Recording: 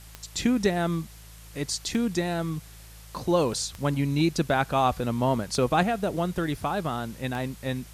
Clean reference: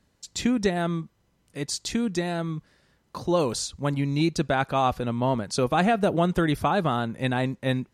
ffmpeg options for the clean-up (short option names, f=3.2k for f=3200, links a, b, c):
-af "adeclick=t=4,bandreject=f=54.5:t=h:w=4,bandreject=f=109:t=h:w=4,bandreject=f=163.5:t=h:w=4,afwtdn=0.0032,asetnsamples=n=441:p=0,asendcmd='5.83 volume volume 5dB',volume=0dB"